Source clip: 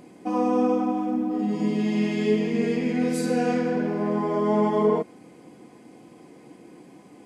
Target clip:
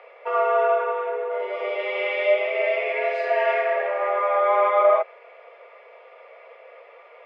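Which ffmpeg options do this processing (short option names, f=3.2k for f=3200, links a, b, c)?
-af "highpass=f=360:w=0.5412,highpass=f=360:w=1.3066,equalizer=f=720:t=q:w=4:g=-7,equalizer=f=1.1k:t=q:w=4:g=4,equalizer=f=1.9k:t=q:w=4:g=9,lowpass=f=2.9k:w=0.5412,lowpass=f=2.9k:w=1.3066,afreqshift=180,volume=5.5dB"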